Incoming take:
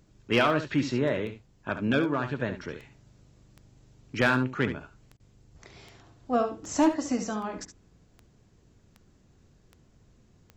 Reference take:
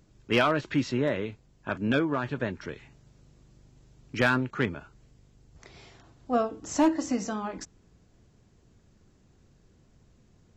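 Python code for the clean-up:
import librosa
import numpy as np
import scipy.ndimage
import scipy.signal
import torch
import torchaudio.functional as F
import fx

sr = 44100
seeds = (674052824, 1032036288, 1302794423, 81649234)

y = fx.fix_declick_ar(x, sr, threshold=10.0)
y = fx.fix_interpolate(y, sr, at_s=(5.17,), length_ms=27.0)
y = fx.fix_echo_inverse(y, sr, delay_ms=70, level_db=-10.0)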